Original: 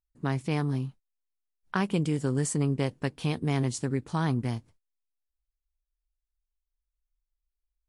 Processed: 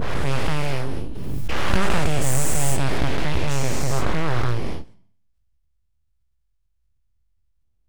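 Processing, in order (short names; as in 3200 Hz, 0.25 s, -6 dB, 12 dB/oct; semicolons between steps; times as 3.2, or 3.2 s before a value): spectral dilation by 0.48 s; high shelf 8600 Hz +4 dB, from 2.98 s -9.5 dB; Schroeder reverb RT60 0.59 s, combs from 29 ms, DRR 18 dB; full-wave rectifier; low shelf 140 Hz +9 dB; backwards sustainer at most 22 dB/s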